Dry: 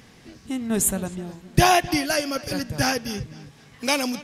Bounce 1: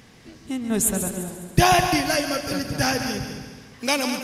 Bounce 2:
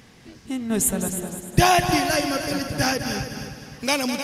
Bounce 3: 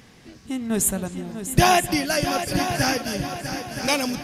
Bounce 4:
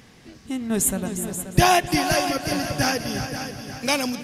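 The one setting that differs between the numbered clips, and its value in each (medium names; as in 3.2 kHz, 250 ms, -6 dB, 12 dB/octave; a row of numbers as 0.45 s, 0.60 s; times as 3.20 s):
multi-head delay, time: 69 ms, 102 ms, 323 ms, 177 ms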